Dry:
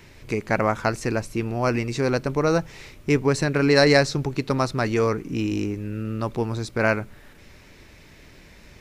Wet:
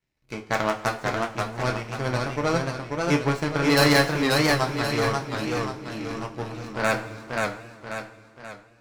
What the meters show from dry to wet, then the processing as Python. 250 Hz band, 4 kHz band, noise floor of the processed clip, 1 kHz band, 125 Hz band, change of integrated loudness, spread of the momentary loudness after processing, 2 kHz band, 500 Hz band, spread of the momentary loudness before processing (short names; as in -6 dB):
-2.5 dB, +2.5 dB, -55 dBFS, +1.5 dB, -2.5 dB, -1.5 dB, 16 LU, +1.0 dB, -3.5 dB, 11 LU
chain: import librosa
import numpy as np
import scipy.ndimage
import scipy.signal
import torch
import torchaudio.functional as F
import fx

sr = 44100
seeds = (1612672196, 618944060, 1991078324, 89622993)

y = 10.0 ** (-8.5 / 20.0) * (np.abs((x / 10.0 ** (-8.5 / 20.0) + 3.0) % 4.0 - 2.0) - 1.0)
y = fx.power_curve(y, sr, exponent=2.0)
y = fx.rev_double_slope(y, sr, seeds[0], early_s=0.25, late_s=1.8, knee_db=-18, drr_db=1.5)
y = fx.echo_warbled(y, sr, ms=535, feedback_pct=45, rate_hz=2.8, cents=115, wet_db=-3)